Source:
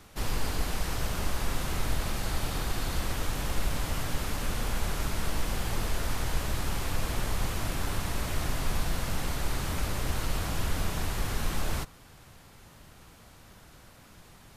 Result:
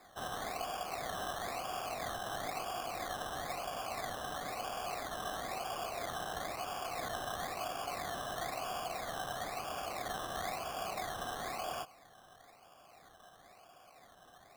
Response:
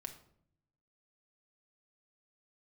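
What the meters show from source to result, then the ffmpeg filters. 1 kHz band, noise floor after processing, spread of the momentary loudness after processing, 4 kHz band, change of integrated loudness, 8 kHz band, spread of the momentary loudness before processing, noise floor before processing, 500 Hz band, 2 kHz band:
+0.5 dB, -61 dBFS, 20 LU, -6.0 dB, -6.5 dB, -8.5 dB, 1 LU, -54 dBFS, -1.5 dB, -5.5 dB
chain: -filter_complex "[0:a]asplit=3[s0][s1][s2];[s0]bandpass=f=730:t=q:w=8,volume=1[s3];[s1]bandpass=f=1090:t=q:w=8,volume=0.501[s4];[s2]bandpass=f=2440:t=q:w=8,volume=0.355[s5];[s3][s4][s5]amix=inputs=3:normalize=0,acrusher=samples=15:mix=1:aa=0.000001:lfo=1:lforange=9:lforate=1,volume=2.51"

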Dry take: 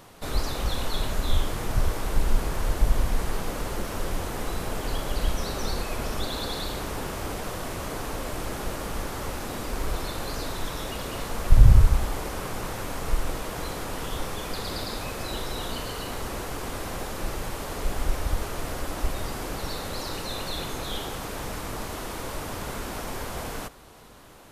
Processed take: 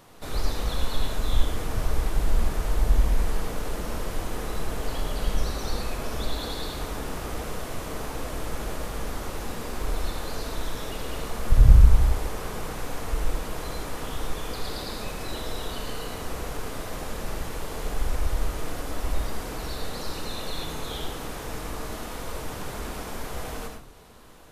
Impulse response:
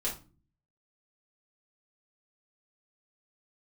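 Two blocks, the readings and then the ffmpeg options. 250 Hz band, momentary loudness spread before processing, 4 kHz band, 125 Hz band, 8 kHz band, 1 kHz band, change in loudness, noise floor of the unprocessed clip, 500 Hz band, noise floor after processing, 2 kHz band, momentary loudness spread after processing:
-1.5 dB, 6 LU, -2.0 dB, 0.0 dB, -2.0 dB, -2.0 dB, 0.0 dB, -35 dBFS, -1.0 dB, -36 dBFS, -2.0 dB, 8 LU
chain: -filter_complex "[0:a]asplit=2[s0][s1];[1:a]atrim=start_sample=2205,adelay=76[s2];[s1][s2]afir=irnorm=-1:irlink=0,volume=0.422[s3];[s0][s3]amix=inputs=2:normalize=0,volume=0.668"

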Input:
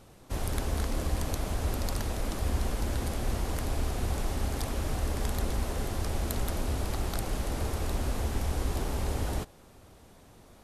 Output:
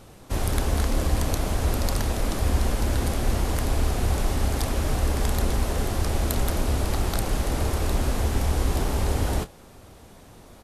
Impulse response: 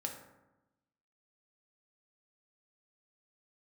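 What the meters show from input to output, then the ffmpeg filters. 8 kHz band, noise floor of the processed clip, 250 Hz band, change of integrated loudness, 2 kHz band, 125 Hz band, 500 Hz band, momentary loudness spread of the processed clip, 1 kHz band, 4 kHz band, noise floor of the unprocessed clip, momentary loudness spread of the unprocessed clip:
+6.5 dB, -48 dBFS, +6.5 dB, +7.0 dB, +6.5 dB, +7.0 dB, +6.5 dB, 2 LU, +6.5 dB, +6.5 dB, -55 dBFS, 2 LU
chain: -filter_complex "[0:a]asplit=2[s0][s1];[s1]adelay=30,volume=0.211[s2];[s0][s2]amix=inputs=2:normalize=0,volume=2.11"

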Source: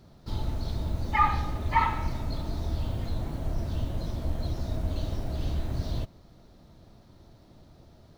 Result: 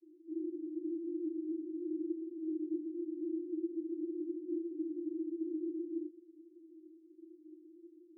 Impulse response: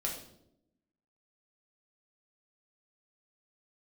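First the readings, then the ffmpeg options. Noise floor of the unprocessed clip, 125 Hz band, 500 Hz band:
-55 dBFS, under -40 dB, -0.5 dB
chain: -af "asuperpass=centerf=330:order=12:qfactor=5.9,volume=3.55"

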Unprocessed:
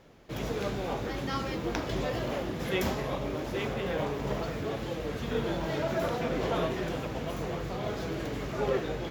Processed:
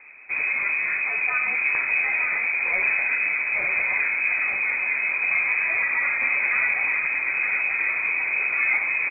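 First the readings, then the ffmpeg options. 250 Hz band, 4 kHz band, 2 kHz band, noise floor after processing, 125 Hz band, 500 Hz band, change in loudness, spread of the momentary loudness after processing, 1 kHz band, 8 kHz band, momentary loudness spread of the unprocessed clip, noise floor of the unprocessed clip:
under -15 dB, under -35 dB, +21.5 dB, -27 dBFS, under -20 dB, -12.5 dB, +11.5 dB, 2 LU, +1.0 dB, under -30 dB, 5 LU, -37 dBFS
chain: -filter_complex "[0:a]lowshelf=f=280:g=7,asplit=2[s0][s1];[s1]alimiter=level_in=1.12:limit=0.0631:level=0:latency=1,volume=0.891,volume=1.41[s2];[s0][s2]amix=inputs=2:normalize=0,aecho=1:1:919:0.422,lowpass=f=2200:t=q:w=0.5098,lowpass=f=2200:t=q:w=0.6013,lowpass=f=2200:t=q:w=0.9,lowpass=f=2200:t=q:w=2.563,afreqshift=-2600,volume=0.891"

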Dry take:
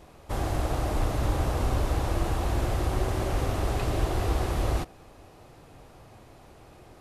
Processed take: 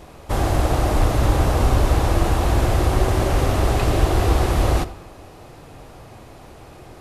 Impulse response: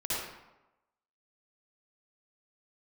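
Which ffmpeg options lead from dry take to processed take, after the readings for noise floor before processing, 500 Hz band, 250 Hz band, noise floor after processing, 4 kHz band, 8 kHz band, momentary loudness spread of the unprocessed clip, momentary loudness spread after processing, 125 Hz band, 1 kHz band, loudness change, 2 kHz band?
-52 dBFS, +9.0 dB, +9.0 dB, -43 dBFS, +9.0 dB, +9.0 dB, 3 LU, 3 LU, +9.0 dB, +9.0 dB, +9.0 dB, +9.0 dB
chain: -filter_complex "[0:a]asplit=2[s0][s1];[1:a]atrim=start_sample=2205[s2];[s1][s2]afir=irnorm=-1:irlink=0,volume=0.0891[s3];[s0][s3]amix=inputs=2:normalize=0,volume=2.66"

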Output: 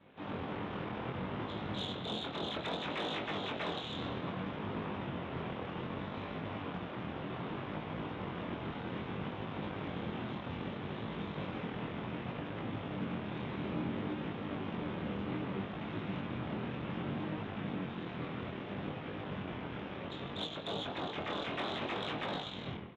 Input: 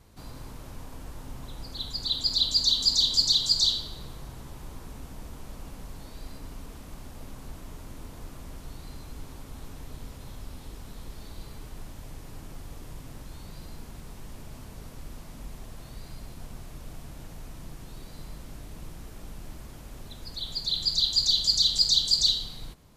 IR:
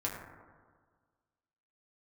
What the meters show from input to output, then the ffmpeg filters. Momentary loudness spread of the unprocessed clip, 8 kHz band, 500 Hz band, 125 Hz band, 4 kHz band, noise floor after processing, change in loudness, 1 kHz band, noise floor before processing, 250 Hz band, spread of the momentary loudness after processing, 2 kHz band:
16 LU, under -30 dB, +10.5 dB, +2.0 dB, -18.5 dB, -44 dBFS, -17.0 dB, +9.5 dB, -45 dBFS, +8.5 dB, 4 LU, +10.0 dB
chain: -filter_complex "[0:a]acrossover=split=1400[s0][s1];[s1]aeval=exprs='0.133*(abs(mod(val(0)/0.133+3,4)-2)-1)':c=same[s2];[s0][s2]amix=inputs=2:normalize=0[s3];[1:a]atrim=start_sample=2205,asetrate=66150,aresample=44100[s4];[s3][s4]afir=irnorm=-1:irlink=0,alimiter=level_in=1.41:limit=0.0631:level=0:latency=1:release=322,volume=0.708,aeval=exprs='abs(val(0))':c=same,aresample=8000,aresample=44100,aeval=exprs='0.0531*(cos(1*acos(clip(val(0)/0.0531,-1,1)))-cos(1*PI/2))+0.0188*(cos(6*acos(clip(val(0)/0.0531,-1,1)))-cos(6*PI/2))+0.00266*(cos(8*acos(clip(val(0)/0.0531,-1,1)))-cos(8*PI/2))':c=same,highpass=150,flanger=delay=19:depth=5.8:speed=0.63,volume=1.58"

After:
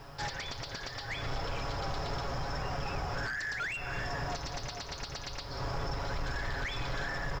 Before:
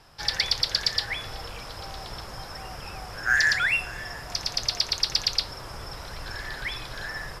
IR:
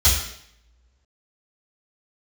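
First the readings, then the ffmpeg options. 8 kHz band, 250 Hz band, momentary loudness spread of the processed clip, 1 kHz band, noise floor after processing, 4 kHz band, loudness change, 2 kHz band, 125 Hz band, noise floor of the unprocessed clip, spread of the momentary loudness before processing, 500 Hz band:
-11.0 dB, +2.5 dB, 5 LU, -0.5 dB, -44 dBFS, -14.5 dB, -11.0 dB, -10.0 dB, +3.0 dB, -40 dBFS, 16 LU, +2.0 dB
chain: -filter_complex "[0:a]asplit=2[s0][s1];[1:a]atrim=start_sample=2205,adelay=122[s2];[s1][s2]afir=irnorm=-1:irlink=0,volume=0.0168[s3];[s0][s3]amix=inputs=2:normalize=0,acompressor=threshold=0.0224:ratio=12,aecho=1:1:7.2:0.58,aresample=16000,aeval=exprs='0.0708*sin(PI/2*2.51*val(0)/0.0708)':c=same,aresample=44100,highshelf=f=2200:g=-10,acrusher=bits=9:mix=0:aa=0.000001,volume=0.562"

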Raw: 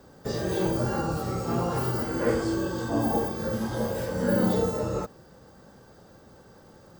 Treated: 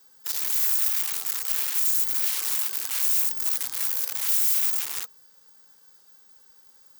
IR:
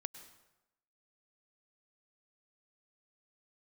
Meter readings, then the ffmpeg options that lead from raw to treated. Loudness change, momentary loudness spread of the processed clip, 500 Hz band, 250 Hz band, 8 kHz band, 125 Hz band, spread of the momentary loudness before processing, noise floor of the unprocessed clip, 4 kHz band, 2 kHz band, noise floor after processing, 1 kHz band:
+5.5 dB, 6 LU, under -25 dB, under -30 dB, +16.0 dB, under -35 dB, 6 LU, -53 dBFS, +8.0 dB, -1.0 dB, -56 dBFS, -12.5 dB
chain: -af "aeval=exprs='(mod(16.8*val(0)+1,2)-1)/16.8':c=same,asuperstop=centerf=640:order=8:qfactor=3.2,aderivative,volume=1.68"

